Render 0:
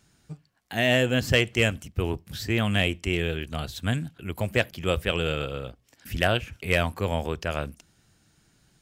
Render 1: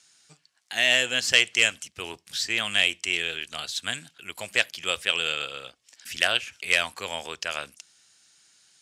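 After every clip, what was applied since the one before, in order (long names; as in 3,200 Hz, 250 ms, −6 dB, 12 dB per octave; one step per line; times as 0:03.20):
meter weighting curve ITU-R 468
level −2.5 dB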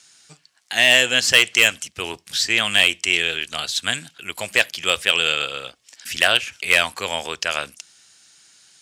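hard clipping −11.5 dBFS, distortion −14 dB
level +7.5 dB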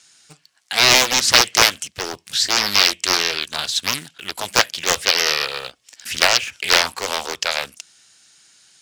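in parallel at −8.5 dB: bit reduction 6 bits
on the sum: highs frequency-modulated by the lows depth 0.99 ms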